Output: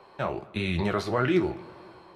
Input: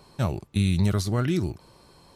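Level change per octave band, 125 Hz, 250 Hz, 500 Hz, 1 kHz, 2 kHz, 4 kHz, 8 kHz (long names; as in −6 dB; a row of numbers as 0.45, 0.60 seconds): −8.5, −2.0, +4.5, +5.5, +5.5, −1.5, −12.0 decibels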